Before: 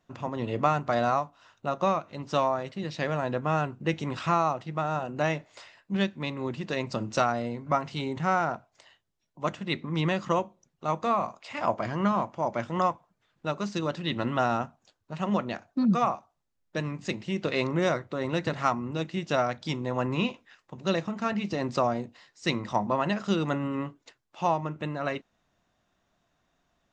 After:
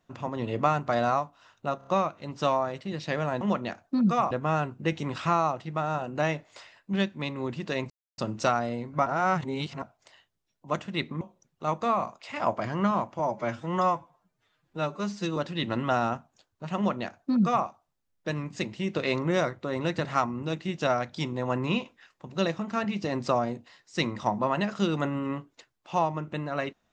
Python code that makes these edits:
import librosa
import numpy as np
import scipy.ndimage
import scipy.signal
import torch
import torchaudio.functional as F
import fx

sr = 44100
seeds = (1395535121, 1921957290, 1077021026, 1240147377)

y = fx.edit(x, sr, fx.stutter(start_s=1.78, slice_s=0.03, count=4),
    fx.insert_silence(at_s=6.91, length_s=0.28),
    fx.reverse_span(start_s=7.79, length_s=0.76),
    fx.cut(start_s=9.94, length_s=0.48),
    fx.stretch_span(start_s=12.4, length_s=1.45, factor=1.5),
    fx.duplicate(start_s=15.25, length_s=0.9, to_s=3.32), tone=tone)